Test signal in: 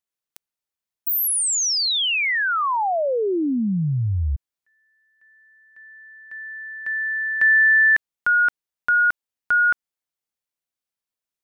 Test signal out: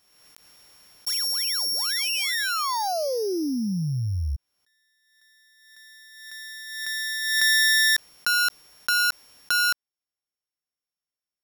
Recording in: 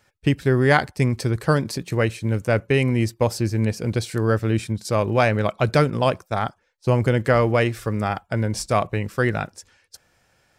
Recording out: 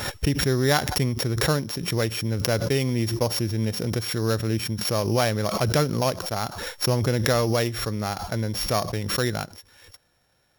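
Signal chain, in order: sorted samples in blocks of 8 samples; swell ahead of each attack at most 45 dB/s; trim -4.5 dB

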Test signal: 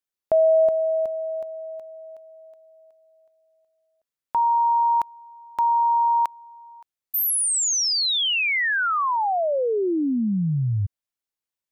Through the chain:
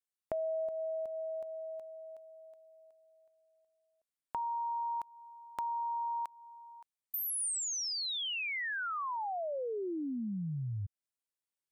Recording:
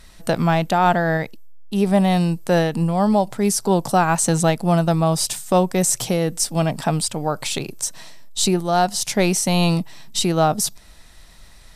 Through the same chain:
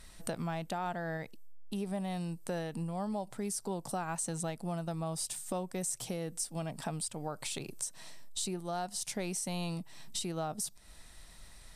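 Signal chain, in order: peaking EQ 8.9 kHz +6.5 dB 0.36 oct; compression 3:1, threshold -30 dBFS; trim -7.5 dB

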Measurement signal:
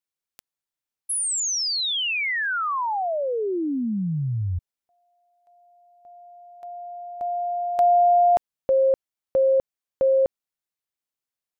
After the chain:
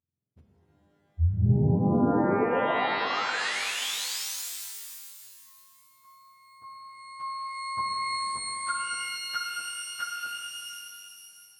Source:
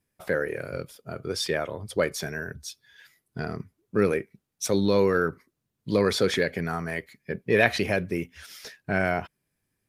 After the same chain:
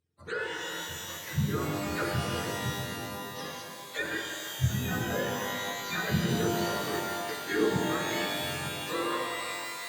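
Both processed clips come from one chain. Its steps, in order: spectrum inverted on a logarithmic axis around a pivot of 870 Hz; low-pass that closes with the level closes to 700 Hz, closed at -19 dBFS; pitch-shifted reverb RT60 2.5 s, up +12 st, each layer -2 dB, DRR 1.5 dB; trim -6 dB

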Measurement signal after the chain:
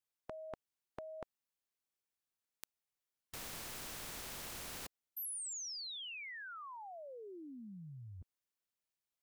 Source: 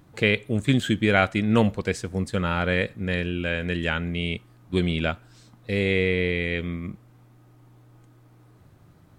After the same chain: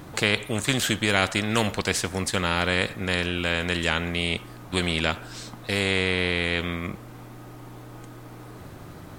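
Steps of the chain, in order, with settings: spectrum-flattening compressor 2:1

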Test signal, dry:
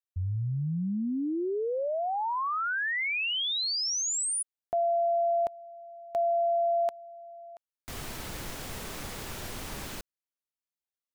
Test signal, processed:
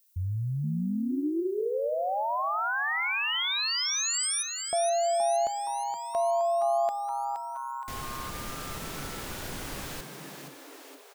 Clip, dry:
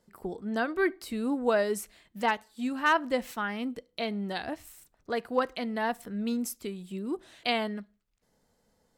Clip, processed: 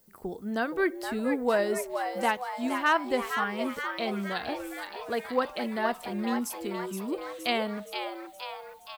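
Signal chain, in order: frequency-shifting echo 470 ms, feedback 60%, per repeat +130 Hz, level -7 dB; added noise violet -65 dBFS

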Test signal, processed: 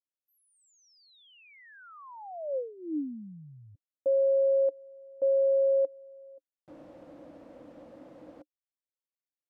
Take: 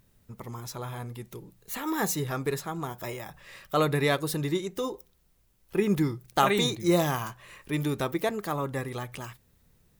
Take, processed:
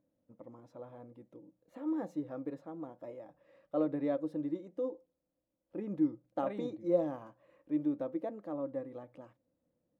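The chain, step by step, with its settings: two resonant band-passes 400 Hz, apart 0.8 oct

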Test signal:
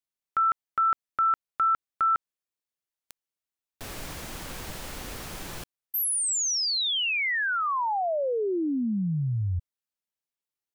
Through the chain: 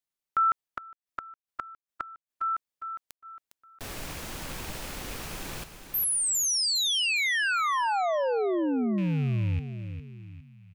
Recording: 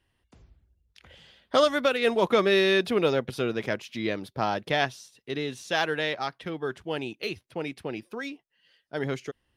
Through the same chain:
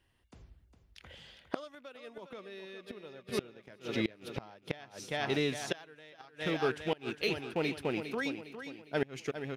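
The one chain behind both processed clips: rattle on loud lows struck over -40 dBFS, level -34 dBFS; feedback delay 407 ms, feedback 42%, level -10 dB; inverted gate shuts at -18 dBFS, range -26 dB

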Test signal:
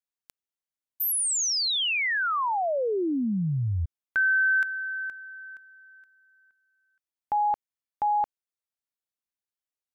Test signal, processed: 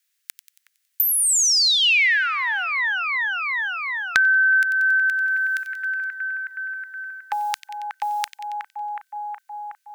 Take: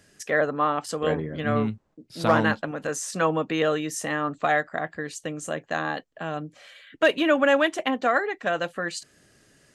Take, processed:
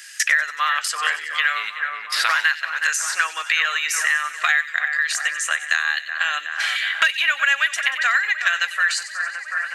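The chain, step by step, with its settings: Chebyshev high-pass 1.7 kHz, order 3; gate -53 dBFS, range -21 dB; dynamic bell 3.3 kHz, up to -5 dB, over -50 dBFS, Q 5.8; on a send: two-band feedback delay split 2.1 kHz, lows 368 ms, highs 92 ms, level -13.5 dB; on the sum: loudness maximiser +17.5 dB; three bands compressed up and down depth 100%; trim -5 dB

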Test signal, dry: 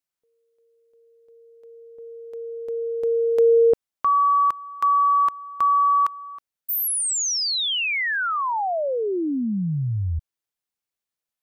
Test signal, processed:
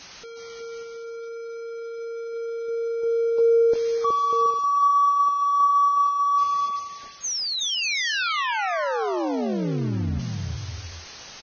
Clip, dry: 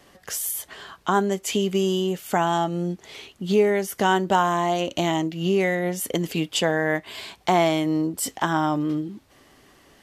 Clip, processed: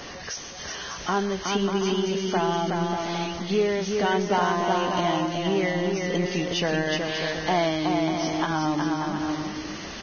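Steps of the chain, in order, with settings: jump at every zero crossing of -28 dBFS; bouncing-ball echo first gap 370 ms, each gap 0.6×, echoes 5; trim -5.5 dB; Vorbis 16 kbps 16 kHz

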